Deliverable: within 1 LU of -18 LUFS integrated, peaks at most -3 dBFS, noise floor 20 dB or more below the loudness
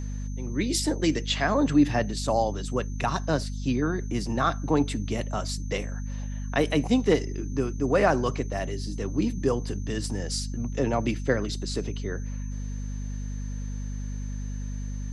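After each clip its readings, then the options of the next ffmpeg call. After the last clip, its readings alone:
hum 50 Hz; highest harmonic 250 Hz; hum level -30 dBFS; steady tone 6.2 kHz; tone level -50 dBFS; loudness -28.0 LUFS; peak level -8.0 dBFS; loudness target -18.0 LUFS
-> -af "bandreject=f=50:t=h:w=6,bandreject=f=100:t=h:w=6,bandreject=f=150:t=h:w=6,bandreject=f=200:t=h:w=6,bandreject=f=250:t=h:w=6"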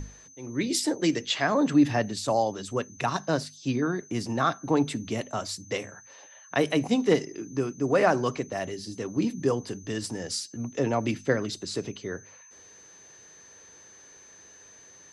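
hum not found; steady tone 6.2 kHz; tone level -50 dBFS
-> -af "bandreject=f=6200:w=30"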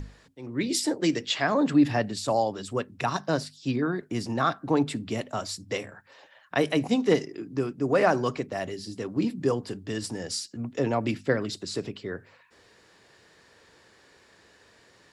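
steady tone not found; loudness -28.0 LUFS; peak level -8.0 dBFS; loudness target -18.0 LUFS
-> -af "volume=3.16,alimiter=limit=0.708:level=0:latency=1"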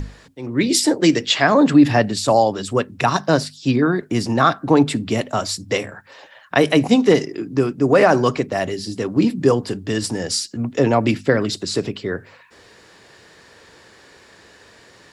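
loudness -18.5 LUFS; peak level -3.0 dBFS; noise floor -49 dBFS

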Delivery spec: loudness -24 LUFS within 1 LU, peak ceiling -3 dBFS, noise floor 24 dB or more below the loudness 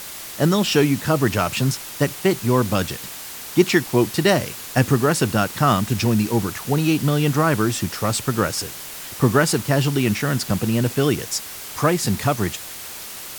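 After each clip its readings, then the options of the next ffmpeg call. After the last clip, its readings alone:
noise floor -35 dBFS; noise floor target -45 dBFS; loudness -20.5 LUFS; peak level -2.0 dBFS; loudness target -24.0 LUFS
-> -af "afftdn=nr=10:nf=-35"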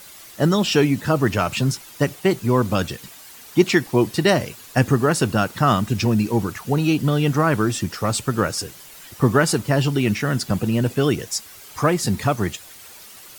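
noise floor -43 dBFS; noise floor target -45 dBFS
-> -af "afftdn=nr=6:nf=-43"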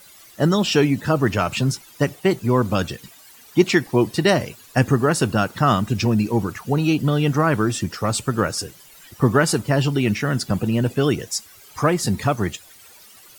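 noise floor -47 dBFS; loudness -20.5 LUFS; peak level -2.0 dBFS; loudness target -24.0 LUFS
-> -af "volume=0.668"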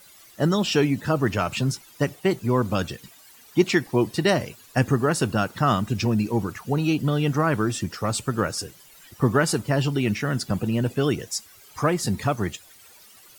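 loudness -24.0 LUFS; peak level -5.5 dBFS; noise floor -51 dBFS

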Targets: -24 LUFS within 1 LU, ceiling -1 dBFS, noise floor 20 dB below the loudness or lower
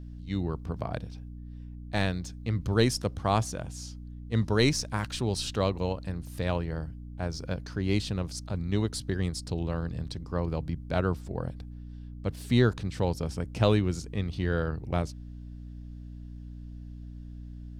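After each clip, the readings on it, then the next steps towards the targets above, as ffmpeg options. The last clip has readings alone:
hum 60 Hz; highest harmonic 300 Hz; hum level -39 dBFS; loudness -30.5 LUFS; peak level -10.0 dBFS; loudness target -24.0 LUFS
-> -af "bandreject=f=60:t=h:w=6,bandreject=f=120:t=h:w=6,bandreject=f=180:t=h:w=6,bandreject=f=240:t=h:w=6,bandreject=f=300:t=h:w=6"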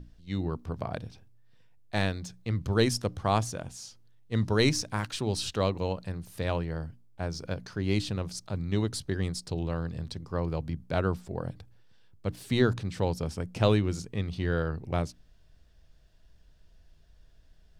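hum not found; loudness -31.0 LUFS; peak level -10.5 dBFS; loudness target -24.0 LUFS
-> -af "volume=2.24"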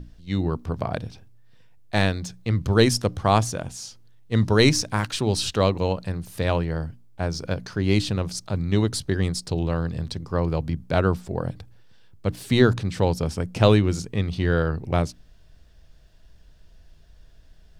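loudness -24.0 LUFS; peak level -3.5 dBFS; noise floor -51 dBFS

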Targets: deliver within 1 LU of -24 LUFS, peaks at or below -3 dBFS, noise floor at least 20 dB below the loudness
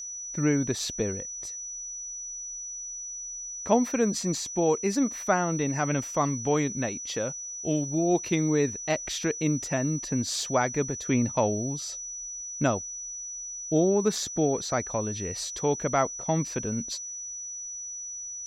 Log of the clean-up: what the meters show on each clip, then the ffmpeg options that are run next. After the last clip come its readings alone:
steady tone 5.9 kHz; tone level -35 dBFS; loudness -28.5 LUFS; peak level -9.0 dBFS; loudness target -24.0 LUFS
-> -af "bandreject=f=5900:w=30"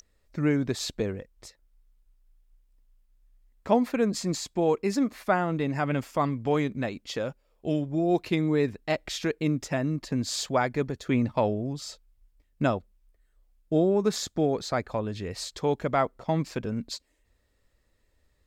steady tone not found; loudness -28.0 LUFS; peak level -9.5 dBFS; loudness target -24.0 LUFS
-> -af "volume=1.58"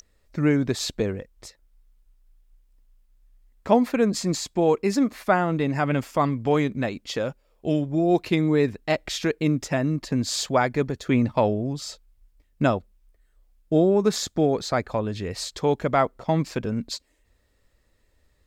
loudness -24.0 LUFS; peak level -5.5 dBFS; noise floor -65 dBFS

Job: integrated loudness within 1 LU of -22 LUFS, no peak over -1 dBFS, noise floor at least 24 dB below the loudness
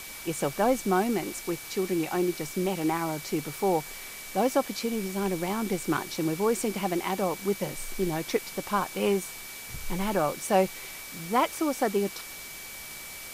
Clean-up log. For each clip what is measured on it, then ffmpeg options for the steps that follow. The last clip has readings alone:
steady tone 2.3 kHz; tone level -45 dBFS; noise floor -42 dBFS; noise floor target -53 dBFS; loudness -29.0 LUFS; peak level -11.5 dBFS; loudness target -22.0 LUFS
-> -af "bandreject=f=2300:w=30"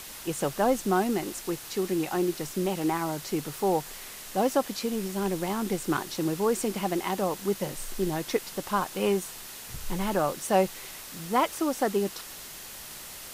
steady tone not found; noise floor -43 dBFS; noise floor target -53 dBFS
-> -af "afftdn=nr=10:nf=-43"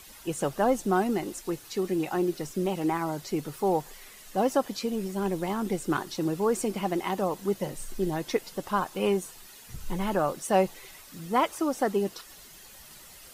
noise floor -50 dBFS; noise floor target -53 dBFS
-> -af "afftdn=nr=6:nf=-50"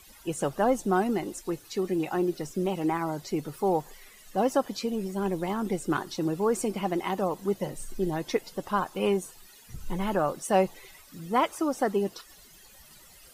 noise floor -53 dBFS; loudness -29.0 LUFS; peak level -11.5 dBFS; loudness target -22.0 LUFS
-> -af "volume=2.24"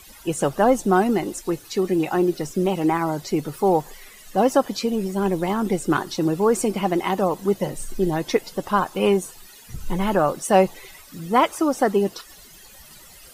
loudness -22.0 LUFS; peak level -4.5 dBFS; noise floor -46 dBFS

